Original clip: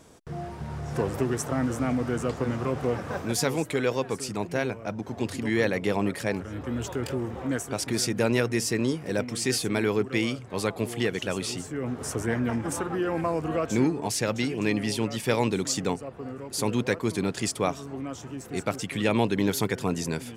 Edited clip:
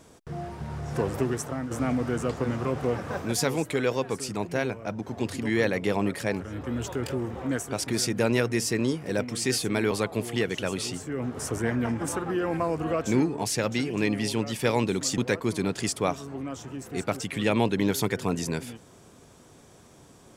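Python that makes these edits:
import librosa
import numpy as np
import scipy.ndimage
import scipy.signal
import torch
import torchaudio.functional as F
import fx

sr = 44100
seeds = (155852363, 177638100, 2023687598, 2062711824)

y = fx.edit(x, sr, fx.fade_out_to(start_s=1.25, length_s=0.46, floor_db=-9.0),
    fx.cut(start_s=9.91, length_s=0.64),
    fx.cut(start_s=15.82, length_s=0.95), tone=tone)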